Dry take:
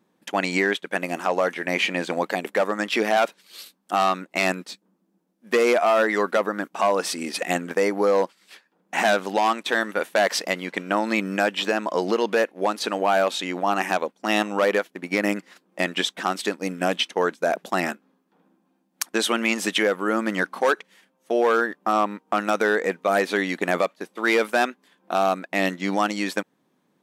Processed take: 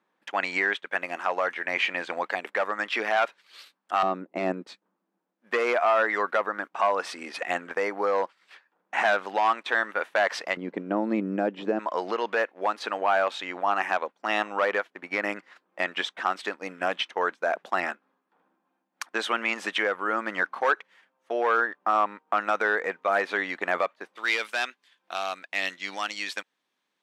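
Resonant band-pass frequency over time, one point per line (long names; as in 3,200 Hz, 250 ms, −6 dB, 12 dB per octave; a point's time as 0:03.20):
resonant band-pass, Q 0.83
1,500 Hz
from 0:04.03 380 Hz
from 0:04.67 1,300 Hz
from 0:10.57 310 Hz
from 0:11.79 1,300 Hz
from 0:24.16 3,300 Hz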